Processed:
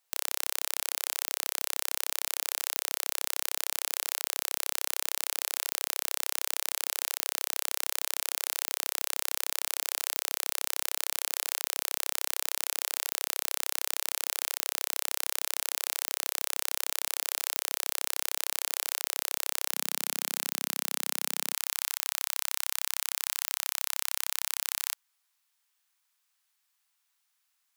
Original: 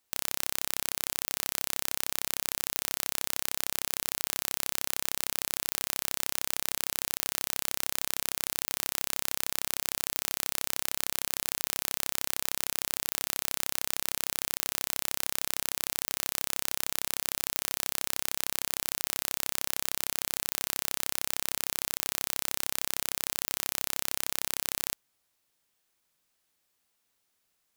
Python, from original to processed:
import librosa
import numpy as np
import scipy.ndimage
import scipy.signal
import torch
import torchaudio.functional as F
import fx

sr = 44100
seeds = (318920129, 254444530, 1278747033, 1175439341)

y = fx.highpass(x, sr, hz=fx.steps((0.0, 500.0), (19.71, 200.0), (21.54, 880.0)), slope=24)